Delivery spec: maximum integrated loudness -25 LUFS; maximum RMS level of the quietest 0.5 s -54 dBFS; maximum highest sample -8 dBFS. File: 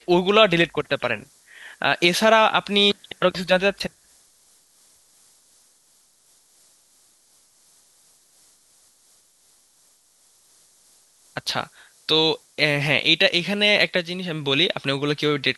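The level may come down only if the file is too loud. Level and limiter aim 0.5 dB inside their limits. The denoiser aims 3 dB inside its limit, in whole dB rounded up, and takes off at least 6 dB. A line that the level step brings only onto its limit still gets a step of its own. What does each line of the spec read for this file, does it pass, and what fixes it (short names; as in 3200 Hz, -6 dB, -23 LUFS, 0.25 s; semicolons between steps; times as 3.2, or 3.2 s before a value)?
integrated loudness -20.0 LUFS: fail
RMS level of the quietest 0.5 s -60 dBFS: OK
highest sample -1.5 dBFS: fail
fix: gain -5.5 dB; limiter -8.5 dBFS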